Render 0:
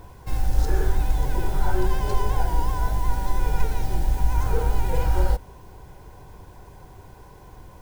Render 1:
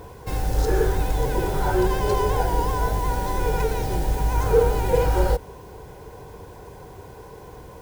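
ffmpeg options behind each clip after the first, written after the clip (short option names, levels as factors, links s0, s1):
-af "highpass=f=73:p=1,equalizer=f=460:t=o:w=0.36:g=9.5,volume=1.68"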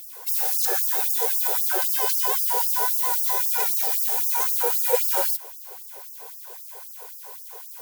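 -af "aemphasis=mode=production:type=75fm,afftfilt=real='re*gte(b*sr/1024,370*pow(4900/370,0.5+0.5*sin(2*PI*3.8*pts/sr)))':imag='im*gte(b*sr/1024,370*pow(4900/370,0.5+0.5*sin(2*PI*3.8*pts/sr)))':win_size=1024:overlap=0.75"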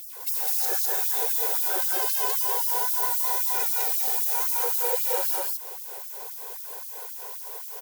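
-filter_complex "[0:a]acompressor=threshold=0.0631:ratio=6,asplit=2[s0][s1];[s1]aecho=0:1:169.1|204.1:0.251|0.891[s2];[s0][s2]amix=inputs=2:normalize=0"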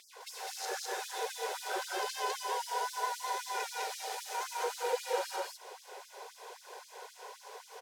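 -af "highpass=270,lowpass=5000,volume=0.75"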